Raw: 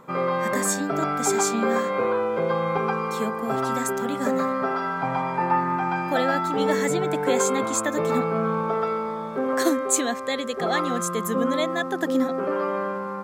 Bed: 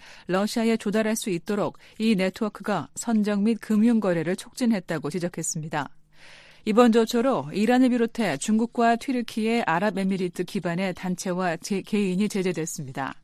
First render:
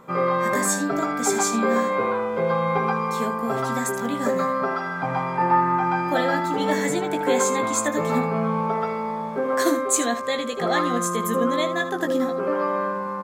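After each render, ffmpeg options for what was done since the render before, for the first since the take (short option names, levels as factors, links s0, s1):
-af "aecho=1:1:17|77:0.501|0.251"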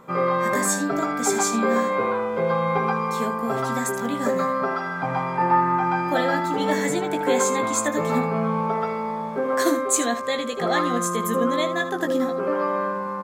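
-af anull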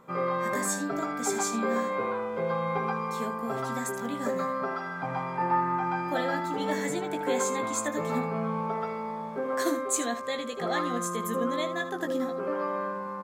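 -af "volume=0.447"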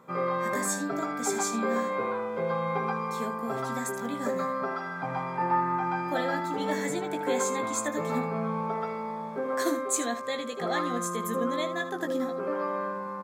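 -af "highpass=84,bandreject=f=2900:w=14"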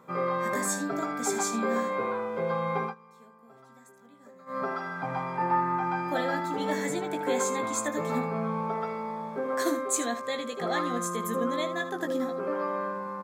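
-filter_complex "[0:a]asplit=3[s0][s1][s2];[s0]atrim=end=2.95,asetpts=PTS-STARTPTS,afade=t=out:st=2.83:d=0.12:silence=0.0749894[s3];[s1]atrim=start=2.95:end=4.46,asetpts=PTS-STARTPTS,volume=0.075[s4];[s2]atrim=start=4.46,asetpts=PTS-STARTPTS,afade=t=in:d=0.12:silence=0.0749894[s5];[s3][s4][s5]concat=n=3:v=0:a=1"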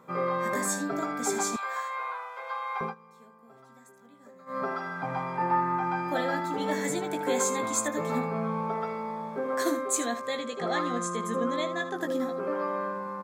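-filter_complex "[0:a]asettb=1/sr,asplit=3[s0][s1][s2];[s0]atrim=end=1.564[s3];[s1]atrim=start=1.56:end=2.81,asetpts=PTS-STARTPTS,afade=t=in:d=0.004:c=qsin,afade=t=out:st=1.246:d=0.004:c=qsin,highpass=f=820:w=0.5412,highpass=f=820:w=1.3066[s4];[s2]atrim=start=2.806[s5];[s3][s4]acrossfade=d=0.004:c1=hsin:c2=qsin[s6];[s6][s5]acrossfade=d=0.004:c1=qsin:c2=hsin,asettb=1/sr,asplit=3[s7][s8][s9];[s7]atrim=end=6.844[s10];[s8]atrim=start=6.84:end=7.88,asetpts=PTS-STARTPTS,afade=t=in:d=0.004:c=qsin,afade=t=out:st=1.036:d=0.004:c=qsin,bass=f=250:g=1,treble=f=4000:g=4[s11];[s9]atrim=start=7.876[s12];[s10][s11]acrossfade=d=0.004:c1=hsin:c2=qsin[s13];[s13][s12]acrossfade=d=0.004:c1=qsin:c2=hsin,asettb=1/sr,asplit=3[s14][s15][s16];[s14]atrim=end=10.394[s17];[s15]atrim=start=10.39:end=11.96,asetpts=PTS-STARTPTS,afade=t=in:d=0.004:c=qsin,afade=t=out:st=1.566:d=0.004:c=qsin,lowpass=f=9100:w=0.5412,lowpass=f=9100:w=1.3066[s18];[s16]atrim=start=11.956[s19];[s17][s18]acrossfade=d=0.004:c1=hsin:c2=qsin[s20];[s20][s19]acrossfade=d=0.004:c1=qsin:c2=hsin"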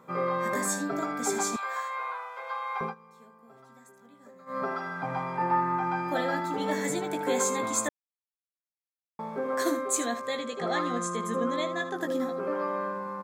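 -filter_complex "[0:a]asplit=3[s0][s1][s2];[s0]atrim=end=7.89,asetpts=PTS-STARTPTS,afade=t=out:st=7.886:d=0.004:c=hsin[s3];[s1]atrim=start=7.89:end=9.19,asetpts=PTS-STARTPTS,volume=0[s4];[s2]atrim=start=9.19,asetpts=PTS-STARTPTS,afade=t=in:d=0.004:c=hsin[s5];[s3][s4][s5]concat=n=3:v=0:a=1"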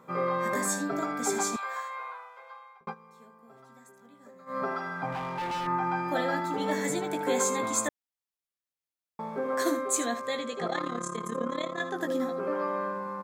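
-filter_complex "[0:a]asettb=1/sr,asplit=3[s0][s1][s2];[s0]atrim=end=5.124[s3];[s1]atrim=start=5.12:end=5.67,asetpts=PTS-STARTPTS,afade=t=in:d=0.004:c=qsin,afade=t=out:st=0.546:d=0.004:c=qsin,volume=33.5,asoftclip=hard,volume=0.0299[s4];[s2]atrim=start=5.666[s5];[s3][s4]acrossfade=d=0.004:c1=hsin:c2=qsin[s6];[s6][s5]acrossfade=d=0.004:c1=qsin:c2=hsin,asettb=1/sr,asplit=3[s7][s8][s9];[s7]atrim=end=10.674[s10];[s8]atrim=start=10.67:end=11.8,asetpts=PTS-STARTPTS,afade=t=in:d=0.004:c=qsin,afade=t=out:st=1.126:d=0.004:c=qsin,tremolo=f=35:d=0.788[s11];[s9]atrim=start=11.796[s12];[s10][s11]acrossfade=d=0.004:c1=hsin:c2=qsin[s13];[s13][s12]acrossfade=d=0.004:c1=qsin:c2=hsin,asplit=2[s14][s15];[s14]atrim=end=2.87,asetpts=PTS-STARTPTS,afade=t=out:st=1.43:d=1.44[s16];[s15]atrim=start=2.87,asetpts=PTS-STARTPTS,afade=t=in:d=0.004:c=hsin[s17];[s16][s17]concat=n=2:v=0:a=1"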